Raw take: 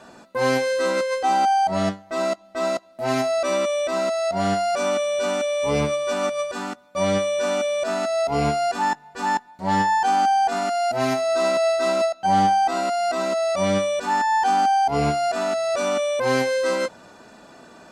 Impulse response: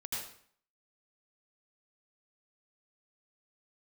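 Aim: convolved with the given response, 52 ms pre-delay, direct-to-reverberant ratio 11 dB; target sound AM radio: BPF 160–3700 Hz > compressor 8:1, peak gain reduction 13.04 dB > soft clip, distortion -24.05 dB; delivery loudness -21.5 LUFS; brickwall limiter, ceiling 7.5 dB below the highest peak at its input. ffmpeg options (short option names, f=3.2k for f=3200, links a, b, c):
-filter_complex "[0:a]alimiter=limit=-16.5dB:level=0:latency=1,asplit=2[a][b];[1:a]atrim=start_sample=2205,adelay=52[c];[b][c]afir=irnorm=-1:irlink=0,volume=-12.5dB[d];[a][d]amix=inputs=2:normalize=0,highpass=160,lowpass=3.7k,acompressor=threshold=-31dB:ratio=8,asoftclip=threshold=-26dB,volume=13dB"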